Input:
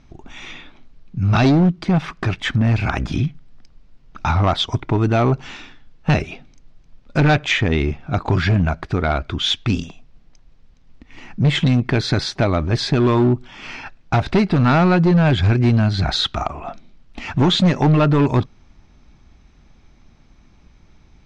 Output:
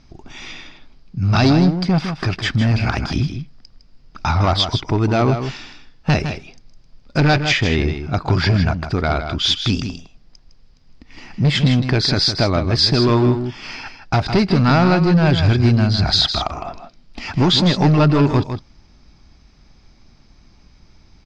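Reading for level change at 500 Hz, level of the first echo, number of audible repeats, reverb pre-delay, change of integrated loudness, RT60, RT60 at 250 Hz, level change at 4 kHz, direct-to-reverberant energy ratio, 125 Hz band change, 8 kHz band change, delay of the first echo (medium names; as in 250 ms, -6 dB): +0.5 dB, -8.5 dB, 1, no reverb, +1.0 dB, no reverb, no reverb, +4.5 dB, no reverb, +0.5 dB, no reading, 158 ms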